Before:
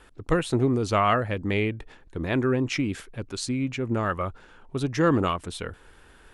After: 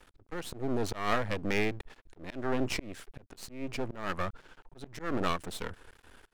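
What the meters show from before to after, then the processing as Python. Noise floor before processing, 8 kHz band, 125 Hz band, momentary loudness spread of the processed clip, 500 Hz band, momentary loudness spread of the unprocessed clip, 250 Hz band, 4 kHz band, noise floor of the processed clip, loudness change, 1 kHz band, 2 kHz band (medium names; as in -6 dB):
-54 dBFS, -6.5 dB, -12.5 dB, 17 LU, -9.0 dB, 14 LU, -10.5 dB, -5.5 dB, -66 dBFS, -8.5 dB, -8.5 dB, -5.5 dB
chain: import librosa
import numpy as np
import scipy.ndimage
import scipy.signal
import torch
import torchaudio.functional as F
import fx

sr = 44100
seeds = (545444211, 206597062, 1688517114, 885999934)

y = np.maximum(x, 0.0)
y = fx.auto_swell(y, sr, attack_ms=272.0)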